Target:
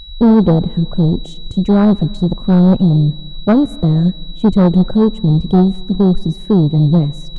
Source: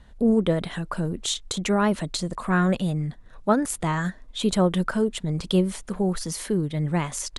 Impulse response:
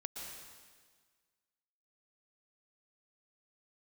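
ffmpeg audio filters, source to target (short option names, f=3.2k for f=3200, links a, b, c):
-filter_complex "[0:a]tiltshelf=f=670:g=9,afwtdn=0.0708,aeval=exprs='val(0)+0.00708*sin(2*PI*3900*n/s)':c=same,aeval=exprs='(tanh(5.01*val(0)+0.2)-tanh(0.2))/5.01':c=same,asplit=2[a][b];[1:a]atrim=start_sample=2205,lowpass=7.8k[c];[b][c]afir=irnorm=-1:irlink=0,volume=-17.5dB[d];[a][d]amix=inputs=2:normalize=0,volume=8.5dB"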